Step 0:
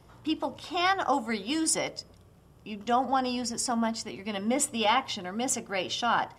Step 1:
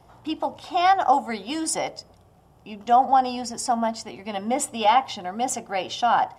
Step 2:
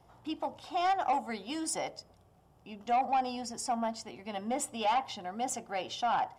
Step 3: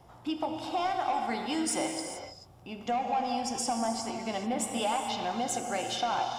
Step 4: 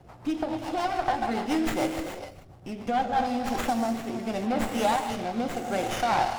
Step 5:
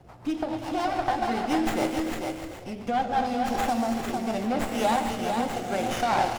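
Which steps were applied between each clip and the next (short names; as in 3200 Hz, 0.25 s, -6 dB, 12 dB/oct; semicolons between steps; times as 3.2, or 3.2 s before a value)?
bell 760 Hz +11 dB 0.57 oct
soft clip -14 dBFS, distortion -15 dB; gain -8 dB
compressor, threshold -34 dBFS, peak gain reduction 9 dB; non-linear reverb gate 0.46 s flat, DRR 3 dB; gain +5.5 dB
rotary speaker horn 7 Hz, later 0.75 Hz, at 2.73; running maximum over 9 samples; gain +7 dB
echo 0.449 s -5 dB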